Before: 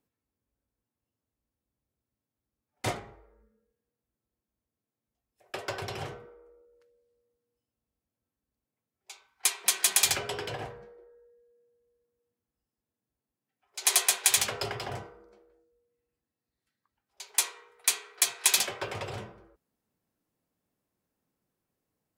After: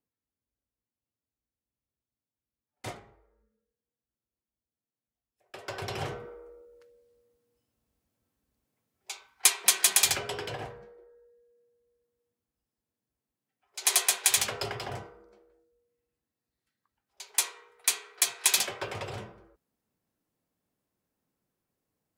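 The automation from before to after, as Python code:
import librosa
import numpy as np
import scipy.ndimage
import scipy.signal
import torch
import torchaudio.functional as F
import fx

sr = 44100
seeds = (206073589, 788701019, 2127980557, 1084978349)

y = fx.gain(x, sr, db=fx.line((5.55, -8.0), (5.83, 0.5), (6.33, 7.5), (9.11, 7.5), (10.17, -0.5)))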